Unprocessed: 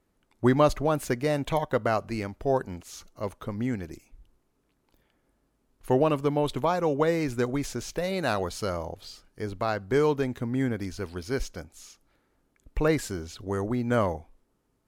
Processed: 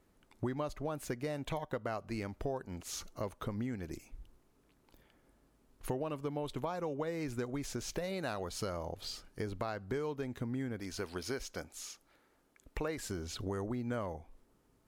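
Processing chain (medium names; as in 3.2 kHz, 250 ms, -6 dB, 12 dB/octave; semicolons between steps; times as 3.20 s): 10.80–12.98 s: bass shelf 220 Hz -10.5 dB; compression 6:1, threshold -38 dBFS, peak gain reduction 21 dB; trim +2.5 dB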